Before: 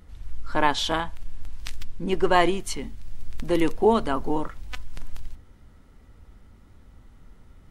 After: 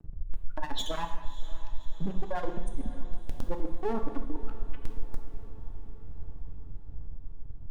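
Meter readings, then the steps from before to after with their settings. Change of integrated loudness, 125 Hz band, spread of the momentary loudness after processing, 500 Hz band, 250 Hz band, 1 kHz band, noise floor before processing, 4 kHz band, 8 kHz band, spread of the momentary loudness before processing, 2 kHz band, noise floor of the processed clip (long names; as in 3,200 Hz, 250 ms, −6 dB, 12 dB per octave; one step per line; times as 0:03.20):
−15.0 dB, −3.5 dB, 13 LU, −13.5 dB, −11.5 dB, −13.5 dB, −53 dBFS, −10.5 dB, −12.0 dB, 22 LU, −16.5 dB, −40 dBFS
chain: expanding power law on the bin magnitudes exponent 2.5
parametric band 360 Hz −13 dB 0.37 octaves
reversed playback
downward compressor 4 to 1, threshold −35 dBFS, peak gain reduction 16.5 dB
reversed playback
brickwall limiter −33.5 dBFS, peak gain reduction 35 dB
auto-filter notch sine 0.6 Hz 390–5,600 Hz
half-wave rectification
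on a send: feedback delay with all-pass diffusion 595 ms, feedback 60%, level −16 dB
on the sum: reverb whose tail is shaped and stops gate 360 ms falling, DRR 5 dB
level +13 dB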